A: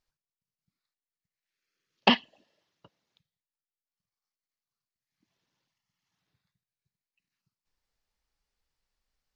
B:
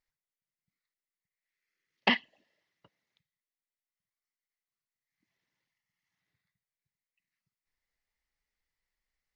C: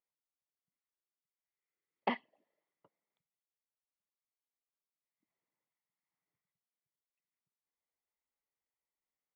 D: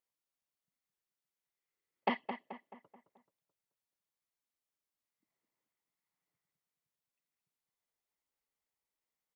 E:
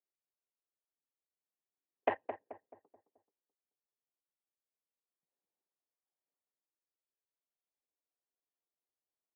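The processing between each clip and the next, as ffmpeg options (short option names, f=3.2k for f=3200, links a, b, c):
-af "equalizer=f=2k:t=o:w=0.35:g=13,volume=-6.5dB"
-af "bandpass=f=540:t=q:w=1.3:csg=0,aecho=1:1:0.9:0.31"
-filter_complex "[0:a]asplit=2[a][b];[b]adelay=216,lowpass=f=2.7k:p=1,volume=-8dB,asplit=2[c][d];[d]adelay=216,lowpass=f=2.7k:p=1,volume=0.46,asplit=2[e][f];[f]adelay=216,lowpass=f=2.7k:p=1,volume=0.46,asplit=2[g][h];[h]adelay=216,lowpass=f=2.7k:p=1,volume=0.46,asplit=2[i][j];[j]adelay=216,lowpass=f=2.7k:p=1,volume=0.46[k];[a][c][e][g][i][k]amix=inputs=6:normalize=0,volume=1dB"
-af "adynamicsmooth=sensitivity=2.5:basefreq=730,highpass=f=490:t=q:w=0.5412,highpass=f=490:t=q:w=1.307,lowpass=f=2.9k:t=q:w=0.5176,lowpass=f=2.9k:t=q:w=0.7071,lowpass=f=2.9k:t=q:w=1.932,afreqshift=-140,volume=3dB"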